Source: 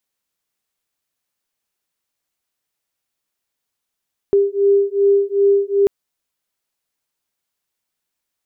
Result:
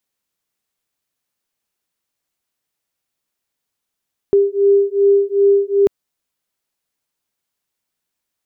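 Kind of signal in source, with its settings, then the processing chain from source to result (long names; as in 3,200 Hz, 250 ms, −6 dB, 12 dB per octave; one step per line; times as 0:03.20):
two tones that beat 398 Hz, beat 2.6 Hz, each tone −15 dBFS 1.54 s
parametric band 180 Hz +2.5 dB 2.7 octaves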